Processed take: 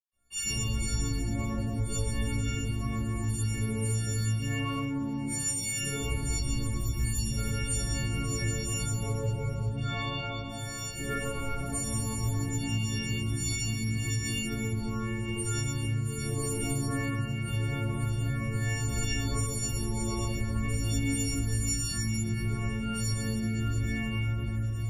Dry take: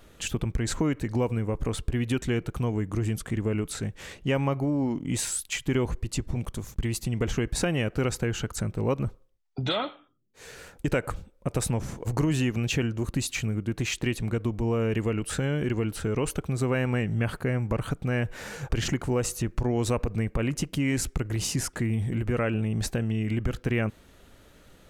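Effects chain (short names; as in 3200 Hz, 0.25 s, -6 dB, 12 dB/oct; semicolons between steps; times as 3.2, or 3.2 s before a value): frequency quantiser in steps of 4 st; in parallel at -2 dB: limiter -18.5 dBFS, peak gain reduction 11 dB; on the sum: gate with hold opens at -34 dBFS; low shelf 120 Hz +11 dB; de-hum 87.66 Hz, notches 6; reverb RT60 3.3 s, pre-delay 0.117 s; compressor, threshold -20 dBFS, peak gain reduction 11 dB; chorus voices 6, 0.11 Hz, delay 17 ms, depth 2 ms; gain -5.5 dB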